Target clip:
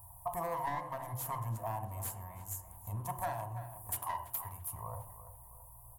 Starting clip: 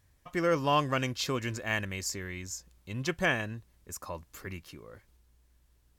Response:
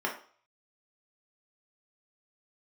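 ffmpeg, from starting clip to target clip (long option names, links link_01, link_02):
-filter_complex "[0:a]firequalizer=gain_entry='entry(110,0);entry(210,-29);entry(460,-28);entry(660,-1);entry(980,6);entry(1400,-28);entry(4800,-30);entry(10000,9)':delay=0.05:min_phase=1,aeval=exprs='clip(val(0),-1,0.00944)':channel_layout=same,acompressor=threshold=-53dB:ratio=8,asettb=1/sr,asplit=3[link_01][link_02][link_03];[link_01]atrim=end=3.104[link_04];[link_02]atrim=start=3.1:end=4.72,asetpts=PTS-STARTPTS,afade=type=in:duration=0.004:curve=qsin,afade=type=out:start_time=1.616:duration=0.004:curve=qsin,tiltshelf=frequency=970:gain=-4[link_05];[link_03]atrim=start=4.716[link_06];[link_04][link_05]acrossfade=duration=0.004:curve1=hsin:curve2=qsin[link_07];[link_07][link_06]acrossfade=duration=0.004:curve1=qsin:curve2=hsin,asplit=2[link_08][link_09];[link_09]adelay=334,lowpass=frequency=2600:poles=1,volume=-11.5dB,asplit=2[link_10][link_11];[link_11]adelay=334,lowpass=frequency=2600:poles=1,volume=0.47,asplit=2[link_12][link_13];[link_13]adelay=334,lowpass=frequency=2600:poles=1,volume=0.47,asplit=2[link_14][link_15];[link_15]adelay=334,lowpass=frequency=2600:poles=1,volume=0.47,asplit=2[link_16][link_17];[link_17]adelay=334,lowpass=frequency=2600:poles=1,volume=0.47[link_18];[link_08][link_10][link_12][link_14][link_16][link_18]amix=inputs=6:normalize=0,asplit=2[link_19][link_20];[1:a]atrim=start_sample=2205,atrim=end_sample=3528,asetrate=23373,aresample=44100[link_21];[link_20][link_21]afir=irnorm=-1:irlink=0,volume=-10.5dB[link_22];[link_19][link_22]amix=inputs=2:normalize=0,volume=13dB"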